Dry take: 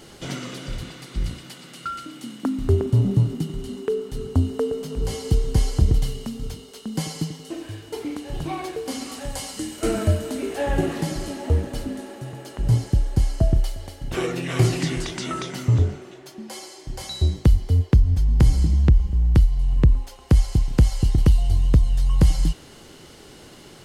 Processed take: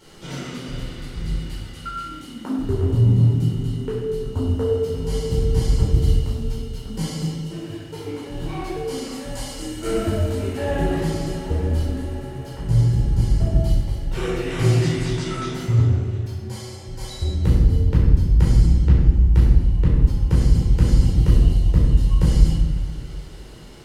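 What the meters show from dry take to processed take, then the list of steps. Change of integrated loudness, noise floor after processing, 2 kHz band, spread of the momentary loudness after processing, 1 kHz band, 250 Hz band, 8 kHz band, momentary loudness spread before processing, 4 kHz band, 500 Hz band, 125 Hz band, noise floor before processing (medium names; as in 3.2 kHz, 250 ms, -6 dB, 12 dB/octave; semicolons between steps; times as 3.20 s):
+2.0 dB, -37 dBFS, 0.0 dB, 15 LU, +0.5 dB, +1.5 dB, -2.0 dB, 16 LU, -0.5 dB, +2.0 dB, +2.5 dB, -45 dBFS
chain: simulated room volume 670 m³, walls mixed, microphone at 4.5 m; trim -10 dB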